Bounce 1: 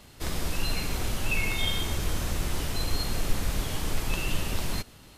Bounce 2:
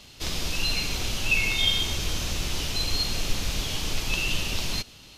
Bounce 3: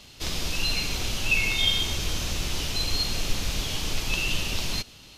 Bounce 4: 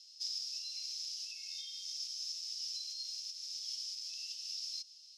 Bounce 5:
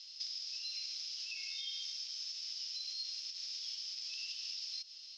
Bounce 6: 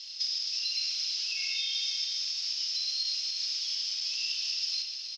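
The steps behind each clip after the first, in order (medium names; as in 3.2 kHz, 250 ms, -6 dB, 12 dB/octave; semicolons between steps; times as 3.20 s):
high-order bell 4 kHz +9 dB; trim -1 dB
no audible change
compression, threshold -27 dBFS, peak gain reduction 10 dB; ladder band-pass 5.4 kHz, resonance 85%; trim -1.5 dB
compression, threshold -45 dBFS, peak gain reduction 9.5 dB; distance through air 230 m; trim +16 dB
delay 322 ms -10.5 dB; simulated room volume 3100 m³, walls mixed, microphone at 2.3 m; trim +7.5 dB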